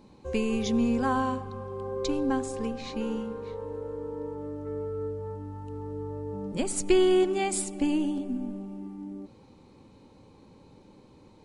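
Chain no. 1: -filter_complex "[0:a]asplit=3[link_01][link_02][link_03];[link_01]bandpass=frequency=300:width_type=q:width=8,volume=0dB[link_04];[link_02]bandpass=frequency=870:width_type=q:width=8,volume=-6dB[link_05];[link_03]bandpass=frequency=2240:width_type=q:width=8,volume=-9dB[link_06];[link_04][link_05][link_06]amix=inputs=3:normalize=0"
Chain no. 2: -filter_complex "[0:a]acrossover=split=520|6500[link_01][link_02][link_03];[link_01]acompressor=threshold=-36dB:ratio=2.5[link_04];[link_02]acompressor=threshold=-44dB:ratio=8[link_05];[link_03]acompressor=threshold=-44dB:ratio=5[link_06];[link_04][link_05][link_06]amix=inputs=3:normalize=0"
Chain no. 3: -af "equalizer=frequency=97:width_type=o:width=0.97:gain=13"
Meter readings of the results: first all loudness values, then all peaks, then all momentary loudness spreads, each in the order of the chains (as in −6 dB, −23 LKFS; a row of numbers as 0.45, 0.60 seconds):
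−38.0, −37.0, −28.0 LKFS; −21.0, −20.5, −10.5 dBFS; 15, 21, 11 LU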